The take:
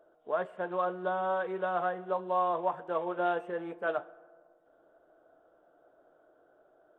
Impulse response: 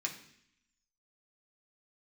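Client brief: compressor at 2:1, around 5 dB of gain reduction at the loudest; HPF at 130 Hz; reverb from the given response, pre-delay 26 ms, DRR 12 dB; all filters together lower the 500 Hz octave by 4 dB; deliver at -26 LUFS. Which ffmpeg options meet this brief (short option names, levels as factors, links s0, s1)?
-filter_complex "[0:a]highpass=130,equalizer=f=500:t=o:g=-5,acompressor=threshold=0.0158:ratio=2,asplit=2[s0][s1];[1:a]atrim=start_sample=2205,adelay=26[s2];[s1][s2]afir=irnorm=-1:irlink=0,volume=0.2[s3];[s0][s3]amix=inputs=2:normalize=0,volume=4.22"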